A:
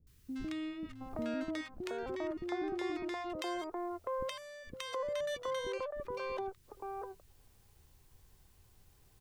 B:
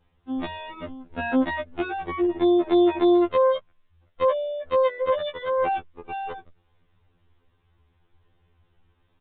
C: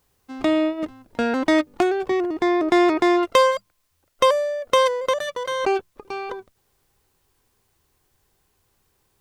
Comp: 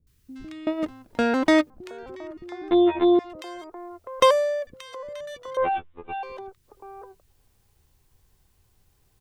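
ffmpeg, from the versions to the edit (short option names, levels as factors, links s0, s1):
-filter_complex "[2:a]asplit=2[s0][s1];[1:a]asplit=2[s2][s3];[0:a]asplit=5[s4][s5][s6][s7][s8];[s4]atrim=end=0.672[s9];[s0]atrim=start=0.668:end=1.702[s10];[s5]atrim=start=1.698:end=2.712[s11];[s2]atrim=start=2.708:end=3.192[s12];[s6]atrim=start=3.188:end=4.202[s13];[s1]atrim=start=4.198:end=4.672[s14];[s7]atrim=start=4.668:end=5.572[s15];[s3]atrim=start=5.568:end=6.232[s16];[s8]atrim=start=6.228[s17];[s9][s10]acrossfade=d=0.004:c1=hsin:c2=hsin[s18];[s18][s11]acrossfade=d=0.004:c1=hsin:c2=hsin[s19];[s19][s12]acrossfade=d=0.004:c1=hsin:c2=hsin[s20];[s20][s13]acrossfade=d=0.004:c1=hsin:c2=hsin[s21];[s21][s14]acrossfade=d=0.004:c1=hsin:c2=hsin[s22];[s22][s15]acrossfade=d=0.004:c1=hsin:c2=hsin[s23];[s23][s16]acrossfade=d=0.004:c1=hsin:c2=hsin[s24];[s24][s17]acrossfade=d=0.004:c1=hsin:c2=hsin"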